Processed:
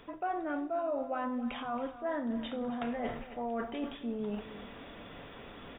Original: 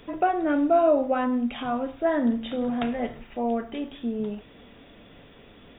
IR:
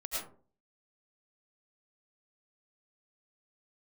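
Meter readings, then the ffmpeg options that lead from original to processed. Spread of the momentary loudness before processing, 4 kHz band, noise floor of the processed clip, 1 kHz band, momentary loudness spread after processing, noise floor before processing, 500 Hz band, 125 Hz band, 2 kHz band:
12 LU, can't be measured, −50 dBFS, −9.5 dB, 14 LU, −51 dBFS, −11.0 dB, −6.0 dB, −7.5 dB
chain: -filter_complex "[0:a]equalizer=frequency=1100:width_type=o:width=1.6:gain=7,areverse,acompressor=threshold=-34dB:ratio=5,areverse,asplit=2[link_01][link_02];[link_02]adelay=274.1,volume=-14dB,highshelf=frequency=4000:gain=-6.17[link_03];[link_01][link_03]amix=inputs=2:normalize=0"

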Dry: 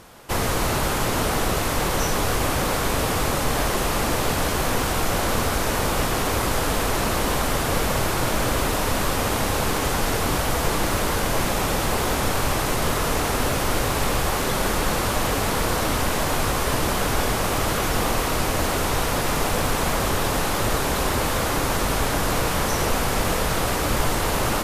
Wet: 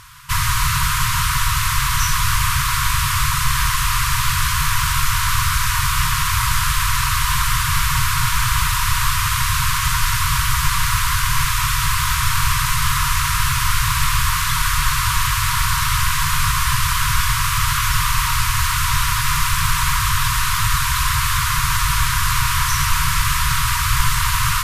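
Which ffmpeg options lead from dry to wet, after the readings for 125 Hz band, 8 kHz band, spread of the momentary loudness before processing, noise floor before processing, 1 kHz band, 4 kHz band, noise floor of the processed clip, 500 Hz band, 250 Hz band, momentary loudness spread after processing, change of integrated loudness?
+6.0 dB, +6.5 dB, 0 LU, −24 dBFS, +4.0 dB, +6.5 dB, −20 dBFS, below −40 dB, can't be measured, 0 LU, +5.0 dB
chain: -af "afftfilt=real='re*(1-between(b*sr/4096,160,930))':imag='im*(1-between(b*sr/4096,160,930))':win_size=4096:overlap=0.75,volume=6.5dB"

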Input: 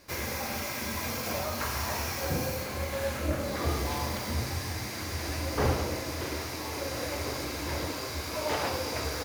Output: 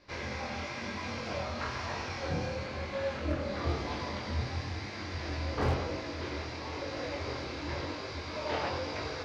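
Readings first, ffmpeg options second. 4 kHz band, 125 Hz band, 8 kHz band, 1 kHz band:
−5.0 dB, −2.5 dB, −14.5 dB, −3.0 dB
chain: -af "flanger=delay=20:depth=5.3:speed=1,lowpass=frequency=4800:width=0.5412,lowpass=frequency=4800:width=1.3066,aeval=exprs='0.0891*(abs(mod(val(0)/0.0891+3,4)-2)-1)':channel_layout=same"

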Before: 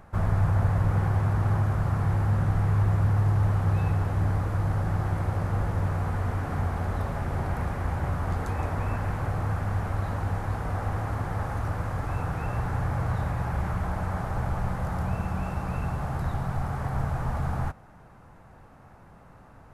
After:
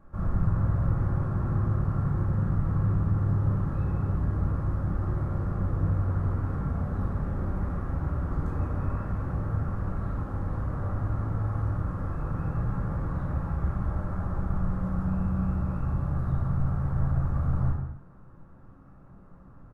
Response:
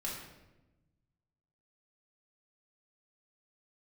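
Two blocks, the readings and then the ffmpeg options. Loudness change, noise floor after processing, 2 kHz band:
−1.5 dB, −50 dBFS, −9.0 dB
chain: -filter_complex "[0:a]firequalizer=gain_entry='entry(350,0);entry(800,-9);entry(1200,-2);entry(2100,-14)':delay=0.05:min_phase=1[link_01];[1:a]atrim=start_sample=2205,afade=type=out:start_time=0.37:duration=0.01,atrim=end_sample=16758[link_02];[link_01][link_02]afir=irnorm=-1:irlink=0,volume=-2.5dB"

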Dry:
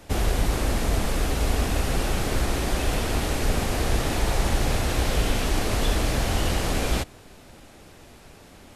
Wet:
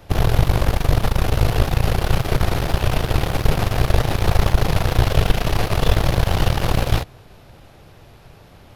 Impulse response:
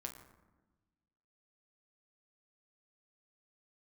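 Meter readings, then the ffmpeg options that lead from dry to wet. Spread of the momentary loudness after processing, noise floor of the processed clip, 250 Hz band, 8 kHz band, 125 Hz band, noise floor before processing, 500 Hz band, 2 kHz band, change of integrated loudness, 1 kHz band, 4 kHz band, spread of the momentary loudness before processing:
3 LU, −46 dBFS, +3.0 dB, −3.0 dB, +8.5 dB, −49 dBFS, +4.5 dB, +3.0 dB, +5.5 dB, +5.0 dB, +3.0 dB, 1 LU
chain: -af "aeval=exprs='0.335*(cos(1*acos(clip(val(0)/0.335,-1,1)))-cos(1*PI/2))+0.133*(cos(4*acos(clip(val(0)/0.335,-1,1)))-cos(4*PI/2))':channel_layout=same,equalizer=frequency=125:width_type=o:width=1:gain=7,equalizer=frequency=250:width_type=o:width=1:gain=-7,equalizer=frequency=2000:width_type=o:width=1:gain=-3,equalizer=frequency=8000:width_type=o:width=1:gain=-12,volume=3dB"

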